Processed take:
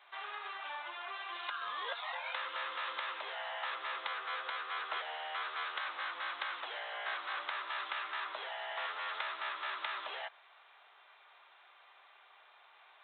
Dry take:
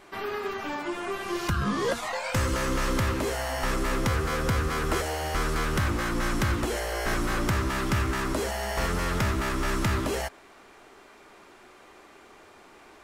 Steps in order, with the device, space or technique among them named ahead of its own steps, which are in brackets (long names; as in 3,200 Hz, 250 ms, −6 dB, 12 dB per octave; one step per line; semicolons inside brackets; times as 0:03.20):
musical greeting card (downsampling to 8,000 Hz; high-pass filter 720 Hz 24 dB per octave; parametric band 3,900 Hz +10 dB 0.45 octaves)
level −7.5 dB